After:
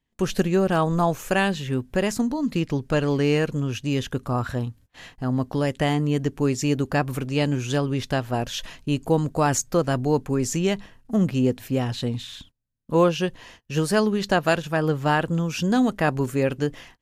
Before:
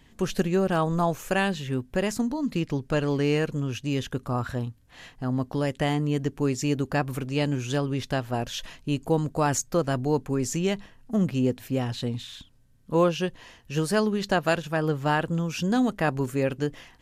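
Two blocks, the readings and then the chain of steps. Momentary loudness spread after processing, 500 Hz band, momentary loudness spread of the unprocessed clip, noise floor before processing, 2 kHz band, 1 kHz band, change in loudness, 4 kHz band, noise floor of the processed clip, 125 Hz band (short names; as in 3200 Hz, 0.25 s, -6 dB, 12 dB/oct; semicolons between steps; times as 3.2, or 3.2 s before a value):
7 LU, +3.0 dB, 7 LU, -56 dBFS, +3.0 dB, +3.0 dB, +3.0 dB, +3.0 dB, -60 dBFS, +3.0 dB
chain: gate -50 dBFS, range -26 dB; gain +3 dB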